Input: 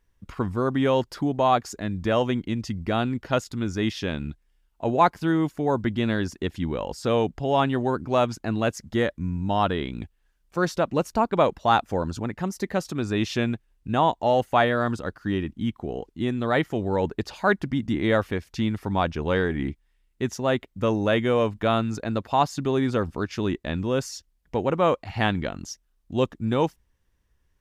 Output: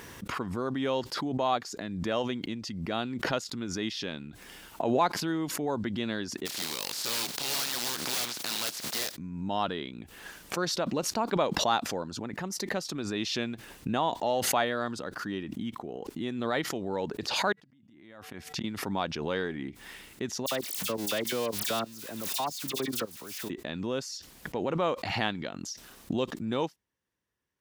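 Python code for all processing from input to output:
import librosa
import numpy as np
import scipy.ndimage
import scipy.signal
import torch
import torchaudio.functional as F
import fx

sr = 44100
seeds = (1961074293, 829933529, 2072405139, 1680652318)

y = fx.spec_flatten(x, sr, power=0.28, at=(6.45, 9.14), fade=0.02)
y = fx.overflow_wrap(y, sr, gain_db=19.0, at=(6.45, 9.14), fade=0.02)
y = fx.chain(y, sr, fx.peak_eq(hz=450.0, db=-9.5, octaves=0.36),
    fx.comb_fb(f0_hz=150.0, decay_s=0.63, harmonics='odd', damping=0.0, mix_pct=30),
    fx.gate_flip(shuts_db=-23.0, range_db=-27), at=(17.52, 18.64))
y = fx.chain(y, sr, fx.crossing_spikes(level_db=-18.0),
    fx.level_steps(step_db=22),
    fx.dispersion(late='lows', ms=59.0, hz=2300.0), at=(20.46, 23.5))
y = scipy.signal.sosfilt(scipy.signal.butter(2, 170.0, 'highpass', fs=sr, output='sos'), y)
y = fx.dynamic_eq(y, sr, hz=4400.0, q=1.3, threshold_db=-48.0, ratio=4.0, max_db=8)
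y = fx.pre_swell(y, sr, db_per_s=35.0)
y = y * librosa.db_to_amplitude(-8.0)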